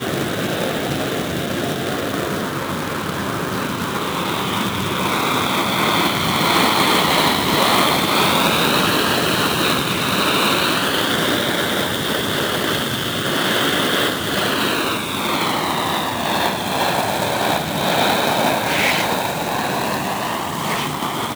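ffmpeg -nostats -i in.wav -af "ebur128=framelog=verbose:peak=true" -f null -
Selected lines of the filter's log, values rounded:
Integrated loudness:
  I:         -18.1 LUFS
  Threshold: -28.1 LUFS
Loudness range:
  LRA:         6.8 LU
  Threshold: -37.8 LUFS
  LRA low:   -21.9 LUFS
  LRA high:  -15.1 LUFS
True peak:
  Peak:       -0.8 dBFS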